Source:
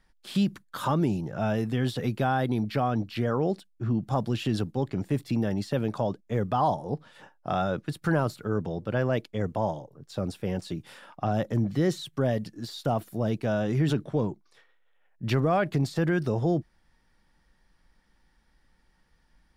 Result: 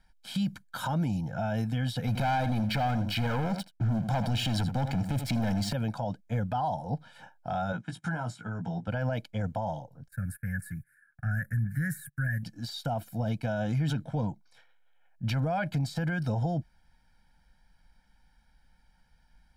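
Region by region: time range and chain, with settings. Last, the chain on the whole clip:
2.07–5.73 s: waveshaping leveller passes 3 + delay 80 ms -14 dB + tape noise reduction on one side only decoder only
7.72–8.88 s: cabinet simulation 130–8800 Hz, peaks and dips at 530 Hz -9 dB, 2.5 kHz -4 dB, 4.4 kHz -9 dB + compression 4:1, threshold -28 dBFS + doubling 17 ms -5 dB
10.08–12.43 s: gate -46 dBFS, range -22 dB + FFT filter 140 Hz 0 dB, 290 Hz -13 dB, 950 Hz -27 dB, 1.7 kHz +15 dB, 3.1 kHz -29 dB, 5.9 kHz -15 dB, 10 kHz +10 dB
whole clip: band-stop 590 Hz, Q 12; comb 1.3 ms, depth 95%; peak limiter -19 dBFS; trim -3 dB

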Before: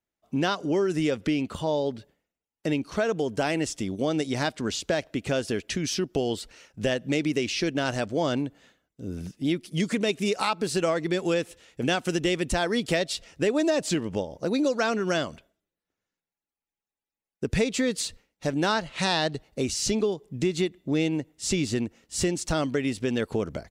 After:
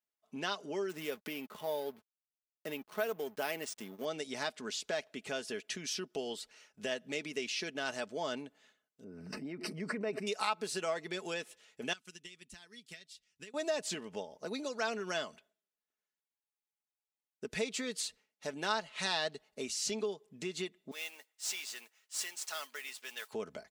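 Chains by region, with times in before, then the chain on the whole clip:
0.89–4.05 s: peaking EQ 60 Hz -14.5 dB 1 oct + hysteresis with a dead band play -37 dBFS + careless resampling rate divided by 3×, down none, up hold
9.04–10.27 s: boxcar filter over 13 samples + swell ahead of each attack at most 29 dB/s
11.93–13.54 s: transient shaper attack +11 dB, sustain 0 dB + amplifier tone stack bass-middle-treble 6-0-2
20.91–23.33 s: high-pass 1.1 kHz + modulation noise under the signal 10 dB
whole clip: high-pass 650 Hz 6 dB/octave; comb 4.7 ms, depth 47%; trim -8 dB

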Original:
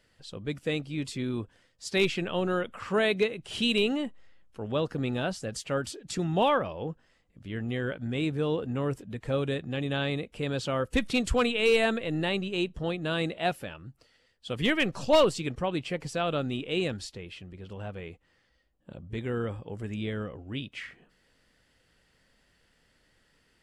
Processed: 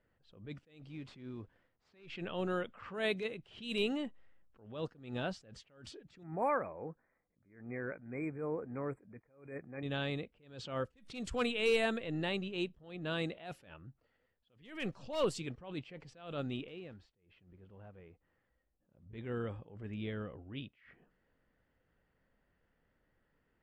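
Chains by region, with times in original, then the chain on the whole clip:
0.88–2.10 s: CVSD coder 64 kbps + compression 4:1, threshold -34 dBFS
6.23–9.83 s: brick-wall FIR band-stop 2.5–7.4 kHz + bass shelf 150 Hz -11 dB
16.68–19.06 s: block-companded coder 5-bit + compression 1.5:1, threshold -58 dBFS
whole clip: level-controlled noise filter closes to 1.5 kHz, open at -21.5 dBFS; attacks held to a fixed rise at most 110 dB/s; trim -7 dB

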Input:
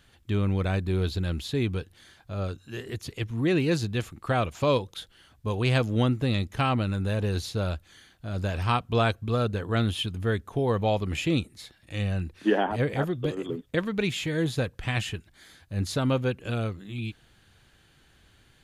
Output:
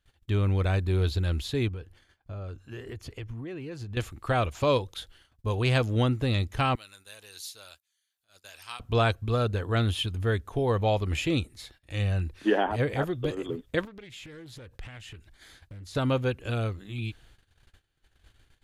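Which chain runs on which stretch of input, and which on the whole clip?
1.68–3.97 s: treble shelf 3.5 kHz -9 dB + band-stop 3.8 kHz, Q 9.2 + compression, threshold -34 dBFS
6.75–8.80 s: differentiator + upward compressor, threshold -53 dBFS
13.85–15.95 s: compression 16:1, threshold -40 dBFS + loudspeaker Doppler distortion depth 0.34 ms
whole clip: bass shelf 66 Hz +11 dB; gate -53 dBFS, range -20 dB; peaking EQ 180 Hz -6.5 dB 0.94 oct

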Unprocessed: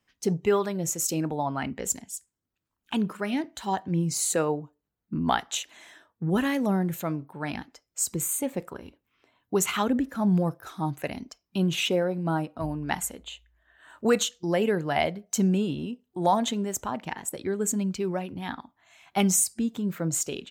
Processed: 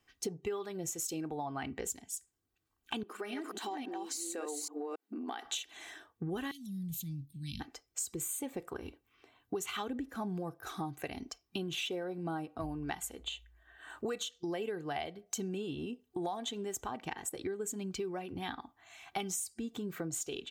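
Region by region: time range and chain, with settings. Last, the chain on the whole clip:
3.03–5.45 s: chunks repeated in reverse 275 ms, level -3 dB + compression, threshold -33 dBFS + brick-wall FIR high-pass 210 Hz
6.51–7.60 s: elliptic band-stop 190–3500 Hz, stop band 50 dB + compression 2:1, threshold -35 dBFS
whole clip: dynamic bell 3.4 kHz, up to +5 dB, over -48 dBFS, Q 2.9; comb 2.6 ms, depth 48%; compression 6:1, threshold -37 dBFS; trim +1 dB

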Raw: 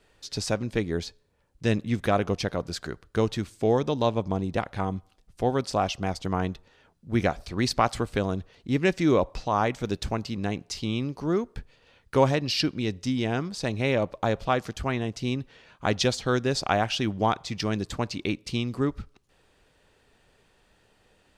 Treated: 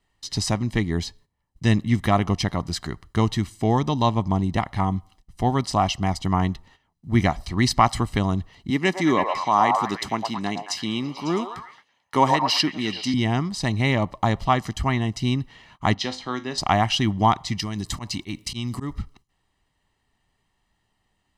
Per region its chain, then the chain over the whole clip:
8.70–13.14 s: high-pass 230 Hz + repeats whose band climbs or falls 110 ms, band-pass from 740 Hz, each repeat 0.7 oct, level -1.5 dB
15.94–16.58 s: three-band isolator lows -14 dB, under 240 Hz, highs -15 dB, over 5.4 kHz + feedback comb 51 Hz, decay 0.28 s, mix 70%
17.59–18.93 s: treble shelf 4.4 kHz +9.5 dB + slow attack 137 ms + compression 12:1, threshold -28 dBFS
whole clip: comb 1 ms, depth 69%; gate -53 dBFS, range -14 dB; trim +3.5 dB

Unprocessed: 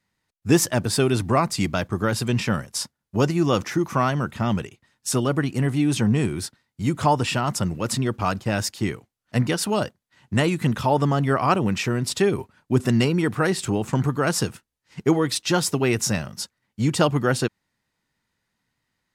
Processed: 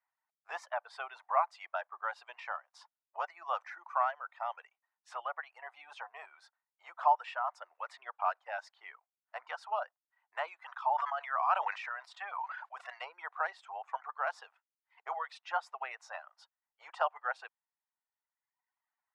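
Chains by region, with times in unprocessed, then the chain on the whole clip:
10.65–13.01 s: high-pass 760 Hz + decay stretcher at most 22 dB/s
whole clip: low-pass 1.2 kHz 12 dB/octave; reverb removal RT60 1.3 s; steep high-pass 690 Hz 48 dB/octave; trim -3.5 dB

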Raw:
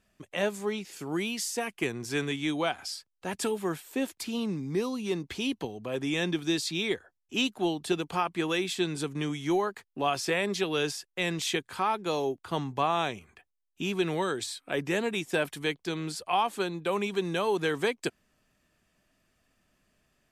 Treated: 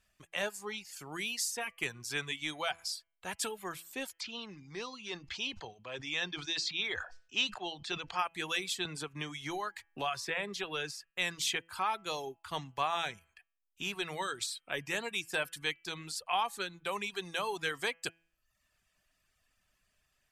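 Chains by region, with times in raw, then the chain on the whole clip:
4.20–8.19 s: low-pass 6 kHz 24 dB/octave + bass shelf 360 Hz -5.5 dB + decay stretcher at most 87 dB/s
8.85–11.10 s: treble shelf 3.7 kHz -9 dB + three bands compressed up and down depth 70%
whole clip: de-hum 166.1 Hz, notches 19; reverb removal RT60 0.69 s; peaking EQ 280 Hz -14 dB 2.4 oct

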